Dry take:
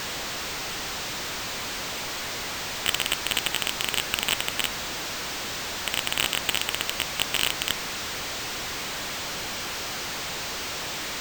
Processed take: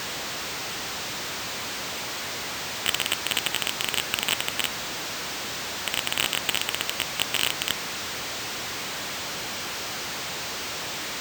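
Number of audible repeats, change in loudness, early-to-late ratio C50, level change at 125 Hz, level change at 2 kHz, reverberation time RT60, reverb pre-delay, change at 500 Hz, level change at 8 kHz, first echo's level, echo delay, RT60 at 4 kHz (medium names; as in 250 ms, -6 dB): no echo, 0.0 dB, no reverb, -1.0 dB, 0.0 dB, no reverb, no reverb, 0.0 dB, 0.0 dB, no echo, no echo, no reverb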